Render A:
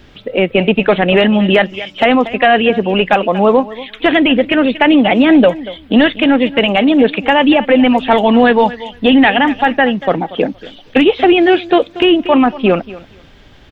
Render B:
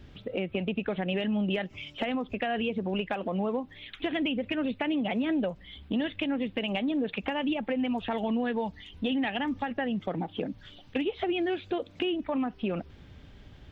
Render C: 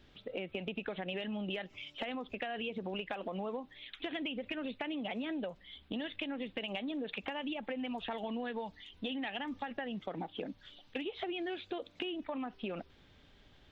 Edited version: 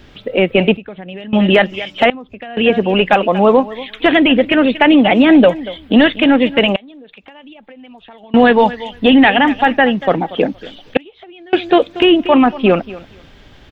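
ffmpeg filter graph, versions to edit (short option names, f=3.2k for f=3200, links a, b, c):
-filter_complex "[1:a]asplit=2[a][b];[2:a]asplit=2[c][d];[0:a]asplit=5[e][f][g][h][i];[e]atrim=end=0.772[j];[a]atrim=start=0.768:end=1.332[k];[f]atrim=start=1.328:end=2.102[l];[b]atrim=start=2.098:end=2.572[m];[g]atrim=start=2.568:end=6.762[n];[c]atrim=start=6.758:end=8.342[o];[h]atrim=start=8.338:end=10.972[p];[d]atrim=start=10.968:end=11.532[q];[i]atrim=start=11.528[r];[j][k]acrossfade=d=0.004:c1=hsin:c2=hsin[s];[s][l]acrossfade=d=0.004:c1=hsin:c2=hsin[t];[t][m]acrossfade=d=0.004:c1=hsin:c2=hsin[u];[u][n]acrossfade=d=0.004:c1=hsin:c2=hsin[v];[v][o]acrossfade=d=0.004:c1=hsin:c2=hsin[w];[w][p]acrossfade=d=0.004:c1=hsin:c2=hsin[x];[x][q]acrossfade=d=0.004:c1=hsin:c2=hsin[y];[y][r]acrossfade=d=0.004:c1=hsin:c2=hsin"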